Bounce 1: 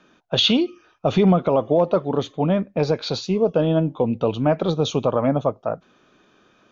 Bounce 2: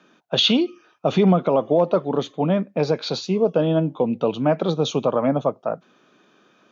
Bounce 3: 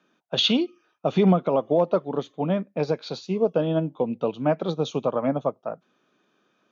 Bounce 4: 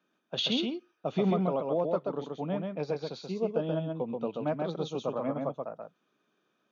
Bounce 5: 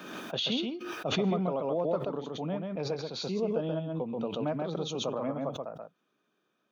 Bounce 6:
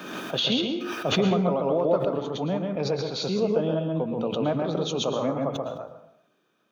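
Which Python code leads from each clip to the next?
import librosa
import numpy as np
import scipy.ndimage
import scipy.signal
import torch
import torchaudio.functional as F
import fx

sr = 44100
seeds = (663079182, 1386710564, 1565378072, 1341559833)

y1 = scipy.signal.sosfilt(scipy.signal.butter(4, 140.0, 'highpass', fs=sr, output='sos'), x)
y2 = fx.upward_expand(y1, sr, threshold_db=-31.0, expansion=1.5)
y2 = F.gain(torch.from_numpy(y2), -1.5).numpy()
y3 = y2 + 10.0 ** (-3.5 / 20.0) * np.pad(y2, (int(132 * sr / 1000.0), 0))[:len(y2)]
y3 = F.gain(torch.from_numpy(y3), -9.0).numpy()
y4 = fx.pre_swell(y3, sr, db_per_s=39.0)
y4 = F.gain(torch.from_numpy(y4), -2.0).numpy()
y5 = fx.rev_plate(y4, sr, seeds[0], rt60_s=0.67, hf_ratio=0.65, predelay_ms=100, drr_db=8.0)
y5 = F.gain(torch.from_numpy(y5), 6.0).numpy()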